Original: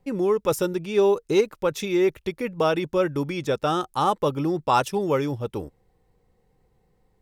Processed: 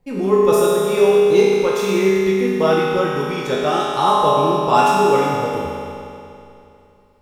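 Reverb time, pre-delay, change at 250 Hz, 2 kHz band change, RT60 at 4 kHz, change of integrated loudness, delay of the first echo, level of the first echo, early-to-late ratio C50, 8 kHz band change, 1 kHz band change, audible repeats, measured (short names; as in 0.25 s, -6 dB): 2.7 s, 8 ms, +5.0 dB, +8.0 dB, 2.6 s, +7.5 dB, none, none, -3.0 dB, +7.5 dB, +9.0 dB, none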